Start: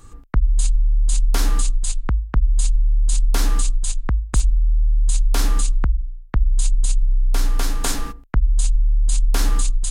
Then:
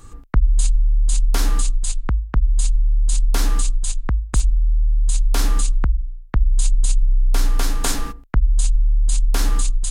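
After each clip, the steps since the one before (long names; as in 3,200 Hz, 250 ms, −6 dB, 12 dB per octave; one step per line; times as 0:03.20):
speech leveller 2 s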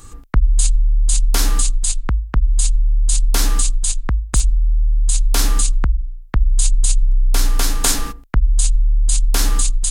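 high-shelf EQ 2,900 Hz +7 dB
level +1.5 dB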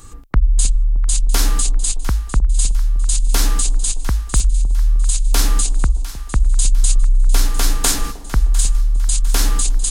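echo with a time of its own for lows and highs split 840 Hz, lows 309 ms, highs 702 ms, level −14.5 dB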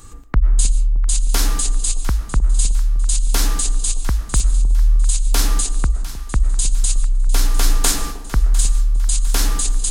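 comb and all-pass reverb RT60 0.93 s, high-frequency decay 0.35×, pre-delay 80 ms, DRR 14 dB
level −1 dB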